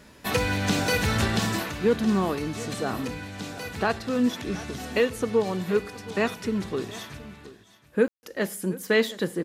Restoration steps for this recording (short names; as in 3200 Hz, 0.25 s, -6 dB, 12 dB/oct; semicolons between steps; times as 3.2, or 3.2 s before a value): room tone fill 8.08–8.23; inverse comb 0.722 s -18 dB